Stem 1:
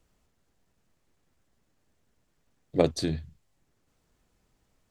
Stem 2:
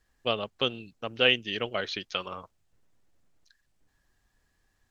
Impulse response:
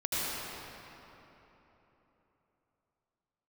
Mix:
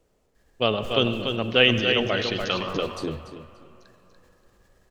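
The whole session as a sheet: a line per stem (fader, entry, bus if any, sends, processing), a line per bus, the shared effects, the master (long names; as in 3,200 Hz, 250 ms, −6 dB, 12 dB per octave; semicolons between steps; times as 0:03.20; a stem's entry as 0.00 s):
+0.5 dB, 0.00 s, no send, echo send −13 dB, parametric band 480 Hz +11.5 dB 1.2 octaves; downward compressor 2 to 1, threshold −29 dBFS, peak gain reduction 12.5 dB; brickwall limiter −18.5 dBFS, peak gain reduction 8 dB
+2.5 dB, 0.35 s, send −17.5 dB, echo send −5 dB, low-shelf EQ 390 Hz +4.5 dB; level that may fall only so fast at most 74 dB per second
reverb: on, RT60 3.6 s, pre-delay 72 ms
echo: repeating echo 289 ms, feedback 23%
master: no processing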